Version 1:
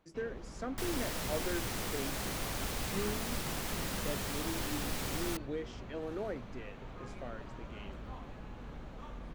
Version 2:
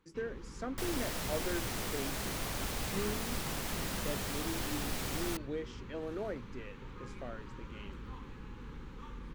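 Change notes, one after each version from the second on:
first sound: add Butterworth band-stop 660 Hz, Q 1.8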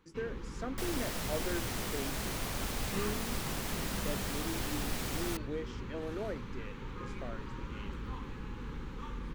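first sound +5.0 dB

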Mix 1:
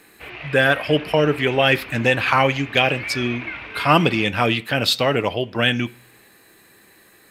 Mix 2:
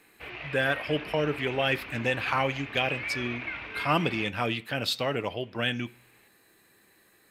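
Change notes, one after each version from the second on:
speech -10.0 dB; background -4.5 dB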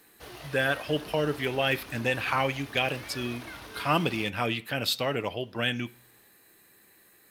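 speech: add treble shelf 11 kHz +11.5 dB; background: remove resonant low-pass 2.4 kHz, resonance Q 5.8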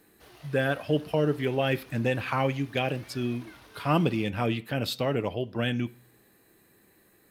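speech: add tilt shelf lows +5.5 dB, about 730 Hz; background -8.5 dB

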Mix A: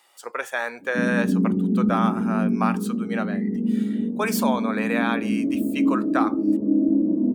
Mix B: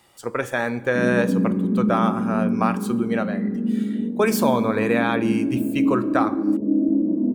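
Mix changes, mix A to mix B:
speech: remove high-pass 640 Hz 12 dB/octave; reverb: on, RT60 1.4 s

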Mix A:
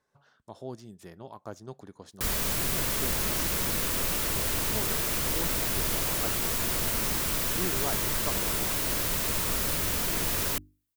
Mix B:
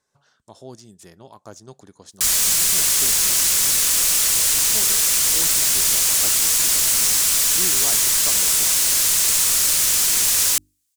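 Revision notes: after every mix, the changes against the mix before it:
background: add tilt shelf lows -6.5 dB, about 890 Hz; master: add peaking EQ 7.4 kHz +12 dB 1.7 oct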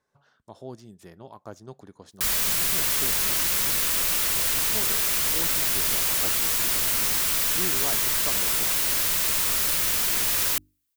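master: add peaking EQ 7.4 kHz -12 dB 1.7 oct

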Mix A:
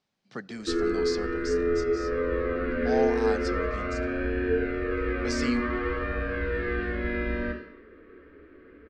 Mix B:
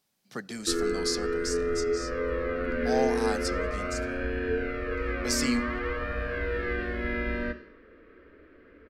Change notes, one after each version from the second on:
background: send -7.5 dB; master: remove distance through air 130 m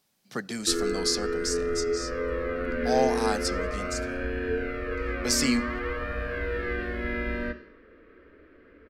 speech +4.0 dB

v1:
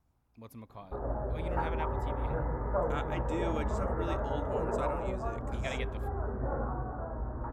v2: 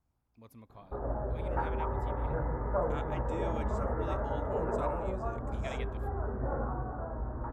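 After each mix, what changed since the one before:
speech -5.5 dB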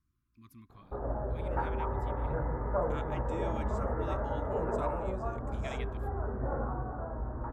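speech: add brick-wall FIR band-stop 390–1000 Hz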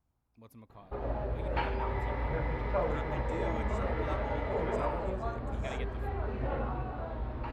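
speech: remove brick-wall FIR band-stop 390–1000 Hz; background: remove steep low-pass 1.6 kHz 48 dB/octave

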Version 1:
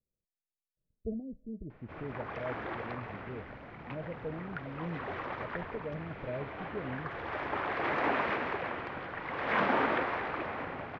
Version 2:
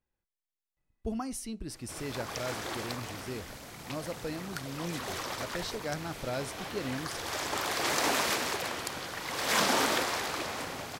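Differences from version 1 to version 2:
speech: remove rippled Chebyshev low-pass 650 Hz, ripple 6 dB; master: remove low-pass 2.3 kHz 24 dB/octave

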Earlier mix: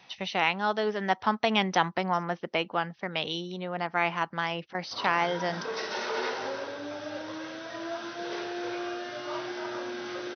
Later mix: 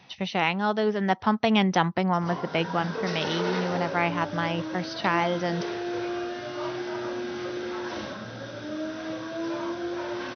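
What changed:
background: entry -2.70 s; master: add bass shelf 280 Hz +12 dB

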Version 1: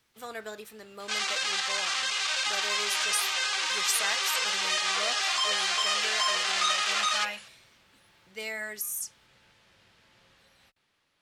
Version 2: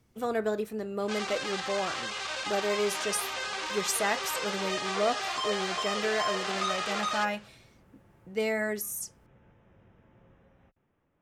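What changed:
speech +7.0 dB; first sound: add boxcar filter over 10 samples; master: add tilt shelf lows +9.5 dB, about 940 Hz

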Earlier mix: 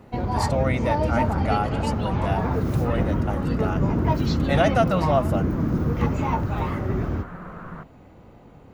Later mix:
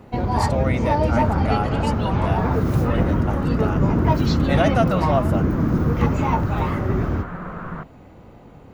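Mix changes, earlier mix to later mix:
first sound +3.5 dB; second sound +6.0 dB

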